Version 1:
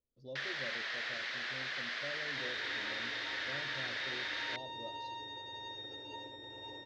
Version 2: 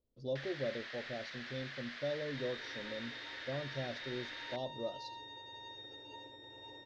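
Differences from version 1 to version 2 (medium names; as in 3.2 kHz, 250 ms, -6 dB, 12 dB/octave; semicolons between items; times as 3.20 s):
speech +9.0 dB; first sound -8.0 dB; second sound -4.5 dB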